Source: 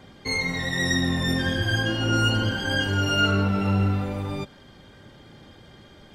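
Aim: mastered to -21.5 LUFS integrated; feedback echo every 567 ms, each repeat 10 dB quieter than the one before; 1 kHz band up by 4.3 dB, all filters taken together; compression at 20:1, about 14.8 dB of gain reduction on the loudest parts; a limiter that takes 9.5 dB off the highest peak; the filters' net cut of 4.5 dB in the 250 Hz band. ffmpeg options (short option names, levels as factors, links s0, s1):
-af "equalizer=f=250:t=o:g=-6.5,equalizer=f=1000:t=o:g=7.5,acompressor=threshold=0.0316:ratio=20,alimiter=level_in=2:limit=0.0631:level=0:latency=1,volume=0.501,aecho=1:1:567|1134|1701|2268:0.316|0.101|0.0324|0.0104,volume=7.08"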